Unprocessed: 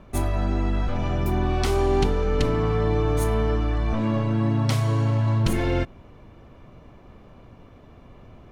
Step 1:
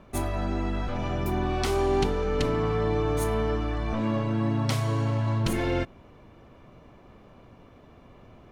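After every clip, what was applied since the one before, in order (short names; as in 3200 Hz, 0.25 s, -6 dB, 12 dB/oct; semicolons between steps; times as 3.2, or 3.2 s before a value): low shelf 120 Hz -6.5 dB; gain -1.5 dB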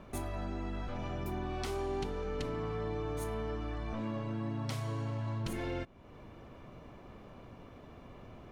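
compressor 2:1, threshold -43 dBFS, peak gain reduction 12.5 dB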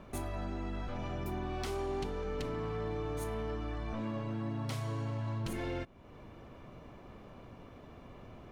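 hard clip -30 dBFS, distortion -24 dB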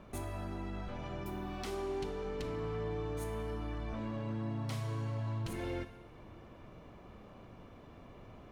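plate-style reverb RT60 1.6 s, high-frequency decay 0.8×, DRR 8 dB; gain -2.5 dB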